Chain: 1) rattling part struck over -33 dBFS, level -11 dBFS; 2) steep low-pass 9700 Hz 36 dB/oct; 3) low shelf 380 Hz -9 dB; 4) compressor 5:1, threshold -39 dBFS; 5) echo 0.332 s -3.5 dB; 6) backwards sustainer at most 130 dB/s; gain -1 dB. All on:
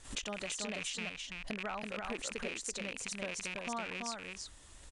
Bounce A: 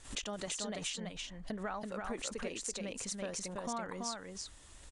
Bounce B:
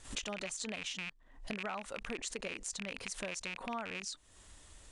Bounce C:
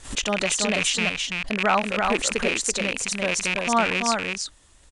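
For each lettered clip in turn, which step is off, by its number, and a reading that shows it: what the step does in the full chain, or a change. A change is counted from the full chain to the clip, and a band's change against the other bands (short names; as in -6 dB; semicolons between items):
1, 2 kHz band -7.5 dB; 5, momentary loudness spread change +9 LU; 4, mean gain reduction 14.0 dB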